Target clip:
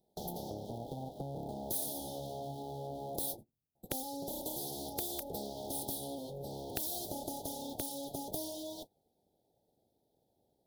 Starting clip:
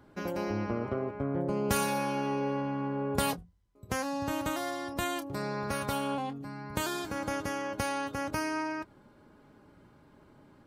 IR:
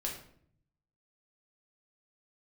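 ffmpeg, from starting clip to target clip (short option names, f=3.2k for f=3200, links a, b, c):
-af "aeval=exprs='abs(val(0))':c=same,asuperstop=centerf=1700:order=20:qfactor=0.69,acompressor=threshold=-40dB:ratio=20,aexciter=amount=3.6:drive=5.9:freq=10k,aeval=exprs='(mod(21.1*val(0)+1,2)-1)/21.1':c=same,highpass=f=110:p=1,agate=range=-20dB:threshold=-55dB:ratio=16:detection=peak,volume=7.5dB"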